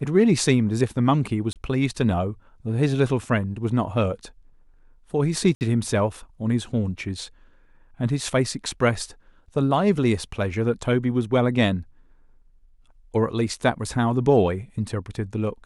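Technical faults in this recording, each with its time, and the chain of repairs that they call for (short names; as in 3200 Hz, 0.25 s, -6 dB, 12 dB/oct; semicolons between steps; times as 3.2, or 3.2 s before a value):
1.53–1.56 gap 28 ms
5.55–5.61 gap 59 ms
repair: interpolate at 1.53, 28 ms; interpolate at 5.55, 59 ms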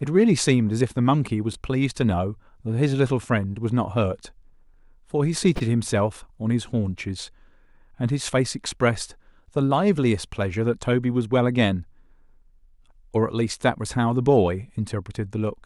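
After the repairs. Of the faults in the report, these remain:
none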